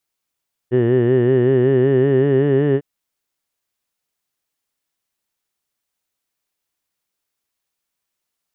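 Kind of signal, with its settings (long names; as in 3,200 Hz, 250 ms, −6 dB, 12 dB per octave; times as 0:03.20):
vowel from formants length 2.10 s, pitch 120 Hz, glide +3 semitones, F1 390 Hz, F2 1,800 Hz, F3 2,900 Hz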